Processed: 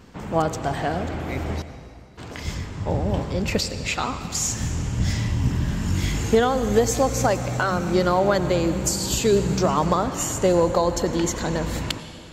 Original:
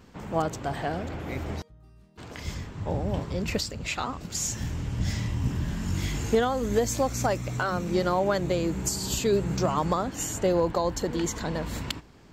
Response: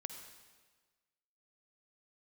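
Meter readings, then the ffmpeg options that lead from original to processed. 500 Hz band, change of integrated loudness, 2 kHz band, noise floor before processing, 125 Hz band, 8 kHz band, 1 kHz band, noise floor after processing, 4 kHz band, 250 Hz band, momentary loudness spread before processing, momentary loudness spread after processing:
+5.5 dB, +5.5 dB, +5.5 dB, −53 dBFS, +5.5 dB, +5.5 dB, +5.5 dB, −41 dBFS, +5.5 dB, +5.5 dB, 10 LU, 10 LU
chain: -filter_complex "[0:a]asplit=2[link_01][link_02];[1:a]atrim=start_sample=2205,asetrate=24255,aresample=44100[link_03];[link_02][link_03]afir=irnorm=-1:irlink=0,volume=-1.5dB[link_04];[link_01][link_04]amix=inputs=2:normalize=0"

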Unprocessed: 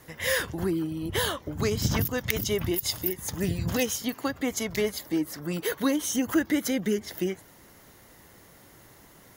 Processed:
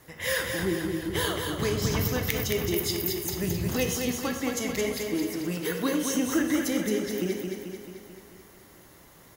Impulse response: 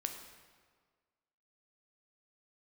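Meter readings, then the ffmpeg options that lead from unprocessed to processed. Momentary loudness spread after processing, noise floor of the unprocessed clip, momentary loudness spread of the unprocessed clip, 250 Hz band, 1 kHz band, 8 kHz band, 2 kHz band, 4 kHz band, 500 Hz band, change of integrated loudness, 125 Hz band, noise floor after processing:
5 LU, −54 dBFS, 5 LU, 0.0 dB, +0.5 dB, 0.0 dB, +0.5 dB, 0.0 dB, +0.5 dB, 0.0 dB, 0.0 dB, −53 dBFS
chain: -filter_complex "[0:a]aecho=1:1:219|438|657|876|1095|1314|1533|1752:0.562|0.321|0.183|0.104|0.0594|0.0338|0.0193|0.011[link_01];[1:a]atrim=start_sample=2205,atrim=end_sample=6615,asetrate=48510,aresample=44100[link_02];[link_01][link_02]afir=irnorm=-1:irlink=0"

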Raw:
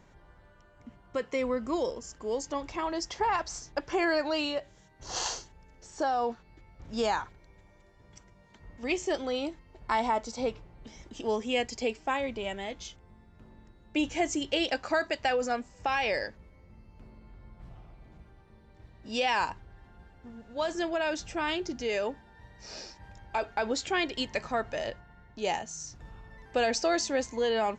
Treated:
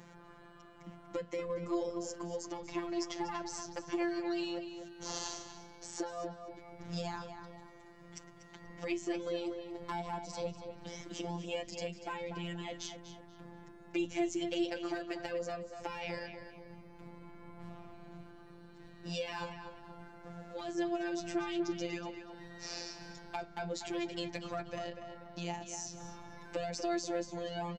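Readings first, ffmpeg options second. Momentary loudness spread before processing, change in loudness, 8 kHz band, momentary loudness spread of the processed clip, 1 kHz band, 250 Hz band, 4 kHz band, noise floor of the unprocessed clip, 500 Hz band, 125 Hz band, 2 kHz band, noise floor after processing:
17 LU, −8.5 dB, −6.0 dB, 17 LU, −11.0 dB, −3.5 dB, −9.0 dB, −58 dBFS, −7.5 dB, +2.0 dB, −11.5 dB, −56 dBFS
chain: -filter_complex "[0:a]highpass=75,acrossover=split=230[link_01][link_02];[link_02]acompressor=threshold=-44dB:ratio=5[link_03];[link_01][link_03]amix=inputs=2:normalize=0,acrossover=split=390|2900[link_04][link_05][link_06];[link_05]asoftclip=type=hard:threshold=-39.5dB[link_07];[link_04][link_07][link_06]amix=inputs=3:normalize=0,afftfilt=real='hypot(re,im)*cos(PI*b)':imag='0':win_size=1024:overlap=0.75,asplit=2[link_08][link_09];[link_09]adelay=241,lowpass=frequency=3300:poles=1,volume=-7.5dB,asplit=2[link_10][link_11];[link_11]adelay=241,lowpass=frequency=3300:poles=1,volume=0.41,asplit=2[link_12][link_13];[link_13]adelay=241,lowpass=frequency=3300:poles=1,volume=0.41,asplit=2[link_14][link_15];[link_15]adelay=241,lowpass=frequency=3300:poles=1,volume=0.41,asplit=2[link_16][link_17];[link_17]adelay=241,lowpass=frequency=3300:poles=1,volume=0.41[link_18];[link_08][link_10][link_12][link_14][link_16][link_18]amix=inputs=6:normalize=0,volume=7.5dB"

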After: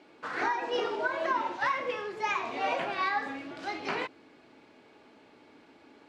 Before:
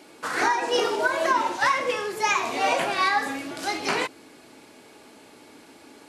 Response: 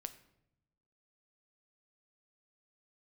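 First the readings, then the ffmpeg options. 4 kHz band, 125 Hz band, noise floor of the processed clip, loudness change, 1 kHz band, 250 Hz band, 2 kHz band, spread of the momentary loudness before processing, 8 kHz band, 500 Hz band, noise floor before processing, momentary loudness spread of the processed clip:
−10.5 dB, −7.0 dB, −58 dBFS, −7.5 dB, −7.0 dB, −7.0 dB, −7.5 dB, 8 LU, −19.0 dB, −7.0 dB, −51 dBFS, 8 LU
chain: -af "lowpass=3400,volume=-7dB"

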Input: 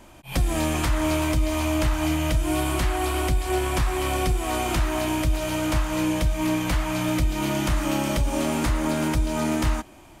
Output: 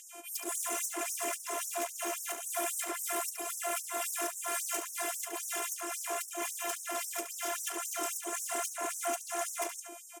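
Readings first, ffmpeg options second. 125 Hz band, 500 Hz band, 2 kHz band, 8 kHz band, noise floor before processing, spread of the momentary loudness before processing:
below −40 dB, −11.5 dB, −9.5 dB, +0.5 dB, −48 dBFS, 2 LU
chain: -filter_complex "[0:a]aeval=exprs='0.251*(cos(1*acos(clip(val(0)/0.251,-1,1)))-cos(1*PI/2))+0.1*(cos(7*acos(clip(val(0)/0.251,-1,1)))-cos(7*PI/2))':channel_layout=same,acrossover=split=880|4300[link_01][link_02][link_03];[link_02]acompressor=mode=upward:threshold=-49dB:ratio=2.5[link_04];[link_01][link_04][link_03]amix=inputs=3:normalize=0,afftfilt=real='hypot(re,im)*cos(PI*b)':imag='0':win_size=512:overlap=0.75,aemphasis=mode=reproduction:type=cd,asoftclip=type=tanh:threshold=-21.5dB,acompressor=threshold=-32dB:ratio=1.5,acrossover=split=240 6200:gain=0.141 1 0.178[link_05][link_06][link_07];[link_05][link_06][link_07]amix=inputs=3:normalize=0,asplit=2[link_08][link_09];[link_09]aecho=0:1:71|142|213:0.376|0.0677|0.0122[link_10];[link_08][link_10]amix=inputs=2:normalize=0,aexciter=amount=10:drive=9.8:freq=6600,afftfilt=real='re*gte(b*sr/1024,240*pow(5400/240,0.5+0.5*sin(2*PI*3.7*pts/sr)))':imag='im*gte(b*sr/1024,240*pow(5400/240,0.5+0.5*sin(2*PI*3.7*pts/sr)))':win_size=1024:overlap=0.75"

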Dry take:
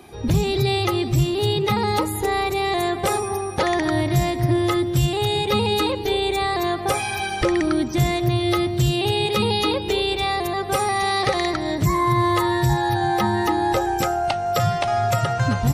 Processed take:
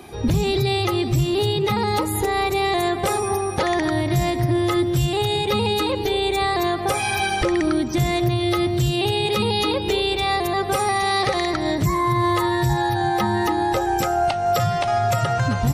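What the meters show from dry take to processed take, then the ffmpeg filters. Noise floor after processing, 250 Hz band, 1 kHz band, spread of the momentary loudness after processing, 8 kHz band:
−25 dBFS, 0.0 dB, +0.5 dB, 2 LU, +0.5 dB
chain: -af "alimiter=limit=-16dB:level=0:latency=1:release=178,volume=4dB"

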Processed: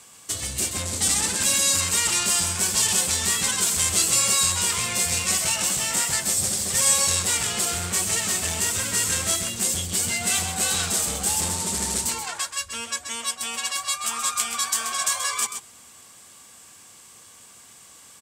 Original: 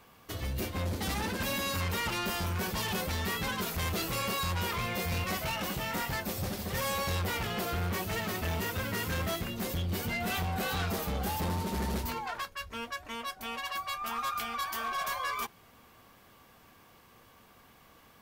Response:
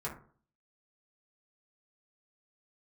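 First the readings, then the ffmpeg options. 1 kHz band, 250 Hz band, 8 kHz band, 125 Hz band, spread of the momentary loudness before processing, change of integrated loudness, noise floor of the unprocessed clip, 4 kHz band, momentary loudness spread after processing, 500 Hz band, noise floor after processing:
+2.5 dB, +0.5 dB, +23.5 dB, −1.0 dB, 6 LU, +12.0 dB, −59 dBFS, +12.0 dB, 9 LU, +1.0 dB, −49 dBFS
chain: -af "lowpass=frequency=8000:width_type=q:width=4.6,aecho=1:1:130:0.376,crystalizer=i=4.5:c=0,highpass=66"

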